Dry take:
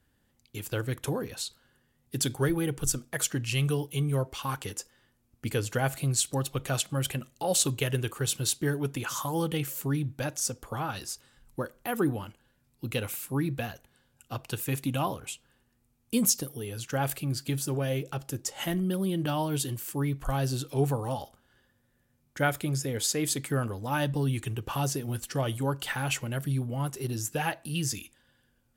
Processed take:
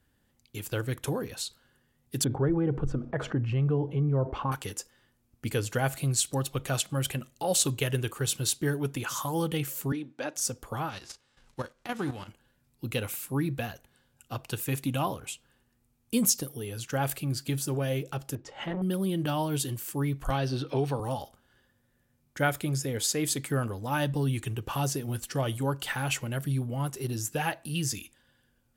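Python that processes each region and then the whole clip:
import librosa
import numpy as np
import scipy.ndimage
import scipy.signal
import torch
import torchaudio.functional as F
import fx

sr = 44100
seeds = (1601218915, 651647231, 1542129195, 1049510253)

y = fx.chain(x, sr, fx.lowpass(hz=1000.0, slope=12),
    fx.env_flatten(amount_pct=50), at=(2.24, 4.52))
y = fx.chain(y, sr, fx.highpass(hz=240.0, slope=24),
    fx.air_absorb(metres=89.0), at=(9.92, 10.36))
y = fx.envelope_flatten(y, sr, power=0.6, at=(10.88, 12.27), fade=0.02)
y = fx.lowpass(y, sr, hz=6000.0, slope=12, at=(10.88, 12.27), fade=0.02)
y = fx.level_steps(y, sr, step_db=10, at=(10.88, 12.27), fade=0.02)
y = fx.chain(y, sr, fx.lowpass(hz=2600.0, slope=12),
    fx.transformer_sat(knee_hz=400.0), at=(18.35, 18.82))
y = fx.chain(y, sr, fx.savgol(points=15),
    fx.low_shelf(hz=110.0, db=-8.0),
    fx.band_squash(depth_pct=100), at=(20.3, 21.0))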